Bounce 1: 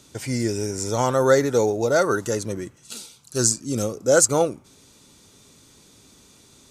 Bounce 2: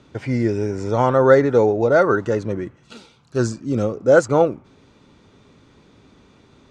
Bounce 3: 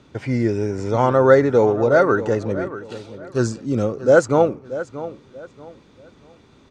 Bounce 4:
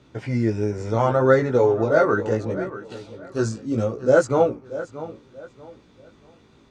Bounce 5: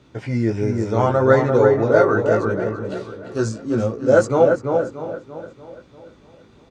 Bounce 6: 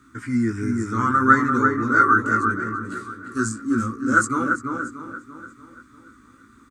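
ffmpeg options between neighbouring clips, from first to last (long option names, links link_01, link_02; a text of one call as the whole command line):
ffmpeg -i in.wav -af "lowpass=2200,volume=4.5dB" out.wav
ffmpeg -i in.wav -filter_complex "[0:a]asplit=2[link_01][link_02];[link_02]adelay=633,lowpass=frequency=5000:poles=1,volume=-14dB,asplit=2[link_03][link_04];[link_04]adelay=633,lowpass=frequency=5000:poles=1,volume=0.29,asplit=2[link_05][link_06];[link_06]adelay=633,lowpass=frequency=5000:poles=1,volume=0.29[link_07];[link_01][link_03][link_05][link_07]amix=inputs=4:normalize=0" out.wav
ffmpeg -i in.wav -af "flanger=delay=15.5:depth=3.5:speed=0.71" out.wav
ffmpeg -i in.wav -filter_complex "[0:a]asplit=2[link_01][link_02];[link_02]adelay=342,lowpass=frequency=1800:poles=1,volume=-3.5dB,asplit=2[link_03][link_04];[link_04]adelay=342,lowpass=frequency=1800:poles=1,volume=0.21,asplit=2[link_05][link_06];[link_06]adelay=342,lowpass=frequency=1800:poles=1,volume=0.21[link_07];[link_01][link_03][link_05][link_07]amix=inputs=4:normalize=0,volume=1.5dB" out.wav
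ffmpeg -i in.wav -af "firequalizer=gain_entry='entry(100,0);entry(160,-9);entry(250,9);entry(480,-16);entry(700,-25);entry(1200,15);entry(2700,-6);entry(5600,1);entry(8000,15)':delay=0.05:min_phase=1,volume=-4dB" out.wav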